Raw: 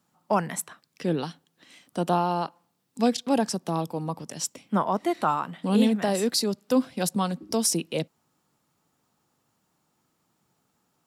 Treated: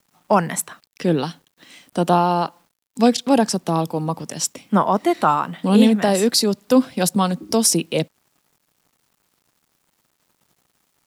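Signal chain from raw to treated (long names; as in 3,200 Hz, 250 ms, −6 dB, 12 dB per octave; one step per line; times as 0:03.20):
bit reduction 11 bits
level +7.5 dB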